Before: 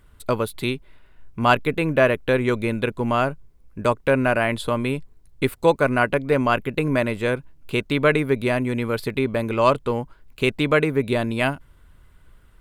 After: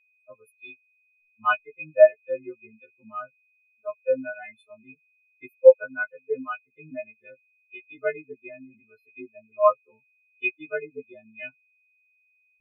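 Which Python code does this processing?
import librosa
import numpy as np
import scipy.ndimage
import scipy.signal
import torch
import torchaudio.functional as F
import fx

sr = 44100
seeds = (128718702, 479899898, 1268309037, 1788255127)

y = fx.freq_snap(x, sr, grid_st=3)
y = y + 10.0 ** (-28.0 / 20.0) * np.sin(2.0 * np.pi * 2500.0 * np.arange(len(y)) / sr)
y = fx.spectral_expand(y, sr, expansion=4.0)
y = y * librosa.db_to_amplitude(-1.0)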